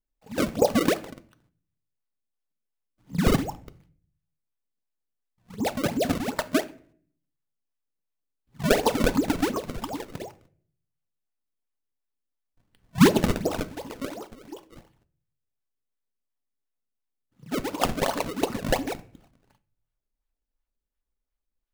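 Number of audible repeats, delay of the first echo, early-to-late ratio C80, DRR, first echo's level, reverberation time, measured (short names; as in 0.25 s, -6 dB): none, none, 23.0 dB, 11.0 dB, none, 0.55 s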